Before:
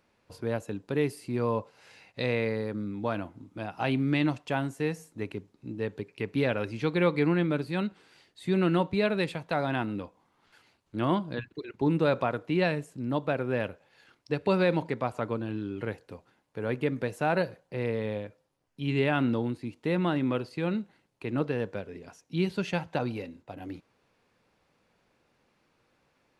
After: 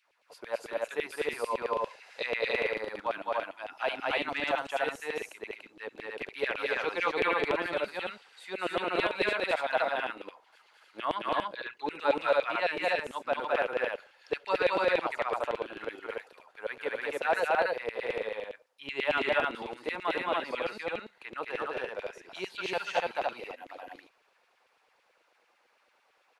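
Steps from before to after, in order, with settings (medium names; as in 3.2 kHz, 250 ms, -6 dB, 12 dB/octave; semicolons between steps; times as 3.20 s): LFO high-pass saw down 9 Hz 460–3000 Hz; loudspeakers at several distances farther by 74 m -1 dB, 99 m -1 dB; trim -3.5 dB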